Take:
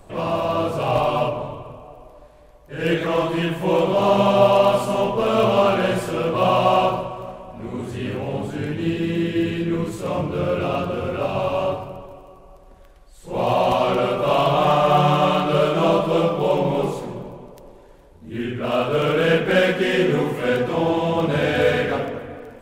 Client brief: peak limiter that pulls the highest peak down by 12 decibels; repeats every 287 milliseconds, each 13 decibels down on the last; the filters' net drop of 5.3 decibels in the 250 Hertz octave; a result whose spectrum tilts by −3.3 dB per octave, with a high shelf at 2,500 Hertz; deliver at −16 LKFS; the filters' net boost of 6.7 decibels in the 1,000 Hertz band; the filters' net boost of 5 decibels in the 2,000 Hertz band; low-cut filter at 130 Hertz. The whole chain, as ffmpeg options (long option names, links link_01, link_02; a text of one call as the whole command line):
ffmpeg -i in.wav -af "highpass=130,equalizer=frequency=250:width_type=o:gain=-8.5,equalizer=frequency=1000:width_type=o:gain=8.5,equalizer=frequency=2000:width_type=o:gain=7,highshelf=frequency=2500:gain=-6.5,alimiter=limit=-12.5dB:level=0:latency=1,aecho=1:1:287|574|861:0.224|0.0493|0.0108,volume=6dB" out.wav